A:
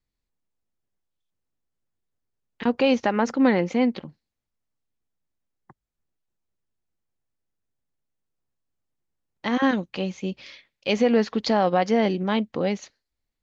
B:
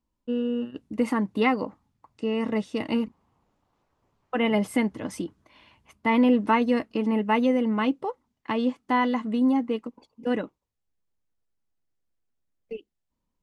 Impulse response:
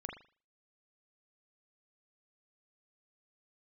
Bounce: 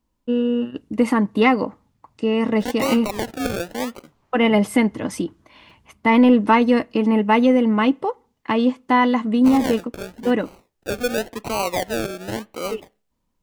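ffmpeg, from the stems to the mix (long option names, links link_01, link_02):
-filter_complex "[0:a]highpass=310,acrusher=samples=35:mix=1:aa=0.000001:lfo=1:lforange=21:lforate=0.93,volume=-2.5dB,asplit=2[link_01][link_02];[link_02]volume=-18.5dB[link_03];[1:a]acontrast=74,volume=0dB,asplit=2[link_04][link_05];[link_05]volume=-23dB[link_06];[2:a]atrim=start_sample=2205[link_07];[link_03][link_06]amix=inputs=2:normalize=0[link_08];[link_08][link_07]afir=irnorm=-1:irlink=0[link_09];[link_01][link_04][link_09]amix=inputs=3:normalize=0"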